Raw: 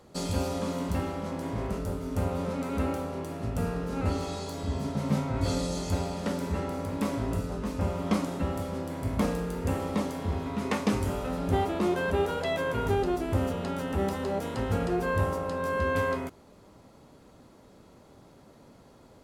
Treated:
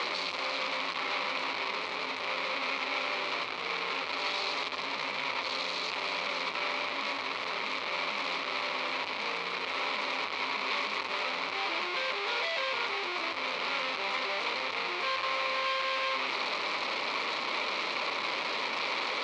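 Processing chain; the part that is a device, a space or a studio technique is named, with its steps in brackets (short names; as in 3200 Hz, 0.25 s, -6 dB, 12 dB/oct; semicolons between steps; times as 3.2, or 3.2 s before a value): home computer beeper (infinite clipping; speaker cabinet 680–4400 Hz, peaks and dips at 720 Hz -6 dB, 1100 Hz +5 dB, 1600 Hz -7 dB, 2300 Hz +10 dB, 4100 Hz +7 dB); gain +1 dB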